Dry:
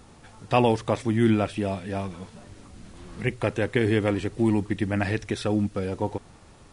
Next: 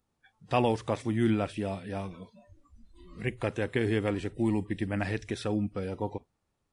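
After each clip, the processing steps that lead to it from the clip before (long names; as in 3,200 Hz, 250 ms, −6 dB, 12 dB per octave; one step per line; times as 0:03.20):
noise reduction from a noise print of the clip's start 23 dB
level −5.5 dB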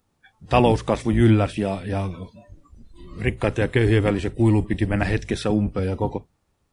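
sub-octave generator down 1 octave, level −3 dB
level +8.5 dB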